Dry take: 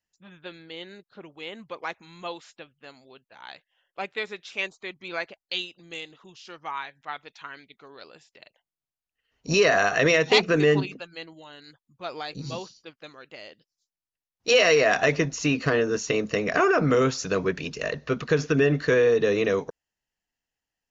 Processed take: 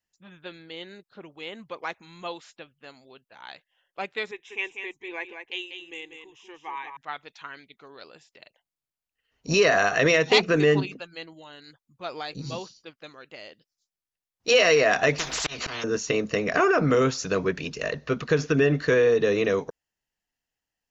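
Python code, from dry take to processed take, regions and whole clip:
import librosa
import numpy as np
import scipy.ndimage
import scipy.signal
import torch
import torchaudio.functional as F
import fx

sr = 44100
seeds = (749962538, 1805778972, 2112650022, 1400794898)

y = fx.chain(x, sr, fx.fixed_phaser(hz=910.0, stages=8),
    fx.echo_single(ms=192, db=-7.0), at=(4.31, 6.97))
y = fx.chain(y, sr, fx.notch_comb(f0_hz=280.0),
    fx.auto_swell(attack_ms=739.0),
    fx.spectral_comp(ratio=10.0), at=(15.18, 15.84))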